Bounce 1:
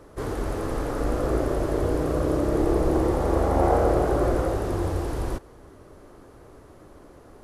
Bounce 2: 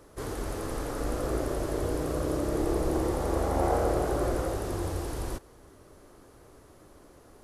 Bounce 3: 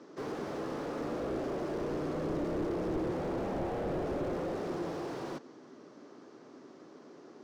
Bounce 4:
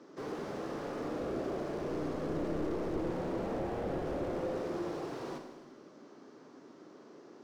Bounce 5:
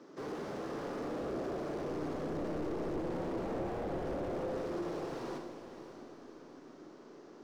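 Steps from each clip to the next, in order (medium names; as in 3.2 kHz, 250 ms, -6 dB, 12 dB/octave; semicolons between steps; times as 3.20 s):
treble shelf 3.2 kHz +9 dB; trim -6 dB
elliptic band-pass 160–5800 Hz; band noise 230–420 Hz -55 dBFS; slew-rate limiter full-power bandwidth 11 Hz
Schroeder reverb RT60 1.3 s, combs from 33 ms, DRR 5 dB; trim -2.5 dB
saturation -30.5 dBFS, distortion -16 dB; on a send: echo that smears into a reverb 582 ms, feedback 41%, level -11 dB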